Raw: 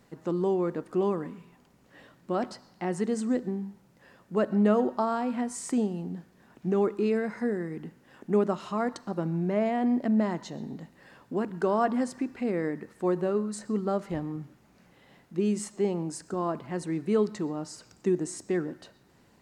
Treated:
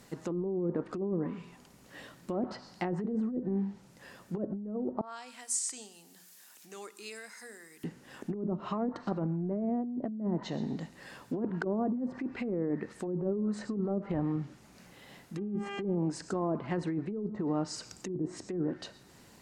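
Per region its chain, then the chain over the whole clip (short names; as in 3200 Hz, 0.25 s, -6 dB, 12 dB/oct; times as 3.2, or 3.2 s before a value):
5.01–7.84 differentiator + notches 60/120/180/240/300/360/420 Hz + upward compressor, threshold -55 dBFS
15.37–15.94 buzz 400 Hz, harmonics 8, -43 dBFS -3 dB/oct + mismatched tape noise reduction decoder only
whole clip: treble ducked by the level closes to 350 Hz, closed at -23 dBFS; high shelf 3700 Hz +9.5 dB; negative-ratio compressor -32 dBFS, ratio -1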